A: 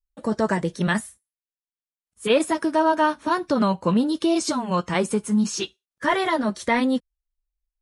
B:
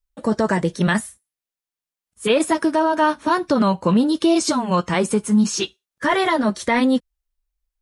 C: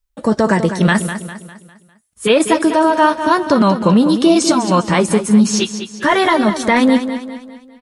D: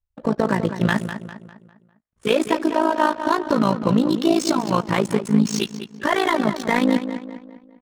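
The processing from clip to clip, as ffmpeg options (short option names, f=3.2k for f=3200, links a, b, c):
-af "alimiter=level_in=12dB:limit=-1dB:release=50:level=0:latency=1,volume=-7.5dB"
-af "aecho=1:1:201|402|603|804|1005:0.316|0.139|0.0612|0.0269|0.0119,volume=5dB"
-af "tremolo=f=55:d=0.824,adynamicsmooth=sensitivity=5:basefreq=1.6k,volume=-3dB"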